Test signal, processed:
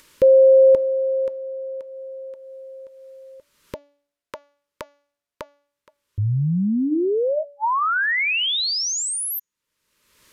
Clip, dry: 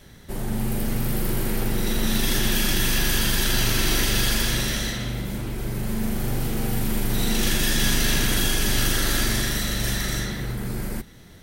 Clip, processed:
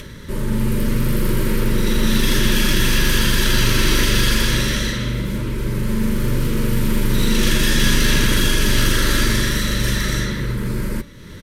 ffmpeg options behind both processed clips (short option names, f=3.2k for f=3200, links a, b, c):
-af "aresample=32000,aresample=44100,highshelf=f=5.7k:g=-7.5,acompressor=mode=upward:threshold=-34dB:ratio=2.5,asuperstop=centerf=740:order=20:qfactor=3,bandreject=f=286.7:t=h:w=4,bandreject=f=573.4:t=h:w=4,bandreject=f=860.1:t=h:w=4,bandreject=f=1.1468k:t=h:w=4,bandreject=f=1.4335k:t=h:w=4,bandreject=f=1.7202k:t=h:w=4,bandreject=f=2.0069k:t=h:w=4,bandreject=f=2.2936k:t=h:w=4,bandreject=f=2.5803k:t=h:w=4,bandreject=f=2.867k:t=h:w=4,bandreject=f=3.1537k:t=h:w=4,bandreject=f=3.4404k:t=h:w=4,bandreject=f=3.7271k:t=h:w=4,bandreject=f=4.0138k:t=h:w=4,bandreject=f=4.3005k:t=h:w=4,bandreject=f=4.5872k:t=h:w=4,bandreject=f=4.8739k:t=h:w=4,bandreject=f=5.1606k:t=h:w=4,bandreject=f=5.4473k:t=h:w=4,bandreject=f=5.734k:t=h:w=4,bandreject=f=6.0207k:t=h:w=4,bandreject=f=6.3074k:t=h:w=4,bandreject=f=6.5941k:t=h:w=4,bandreject=f=6.8808k:t=h:w=4,volume=6.5dB"